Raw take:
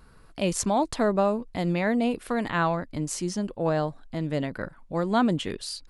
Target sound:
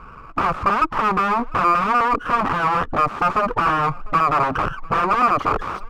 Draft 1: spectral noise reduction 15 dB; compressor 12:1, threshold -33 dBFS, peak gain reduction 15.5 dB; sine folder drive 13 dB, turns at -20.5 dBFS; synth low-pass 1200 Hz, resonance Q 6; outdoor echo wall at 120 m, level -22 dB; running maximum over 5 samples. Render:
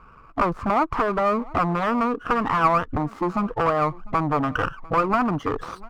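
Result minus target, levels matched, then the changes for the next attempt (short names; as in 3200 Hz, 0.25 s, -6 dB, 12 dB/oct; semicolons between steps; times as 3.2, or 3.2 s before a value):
sine folder: distortion -19 dB
change: sine folder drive 22 dB, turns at -20.5 dBFS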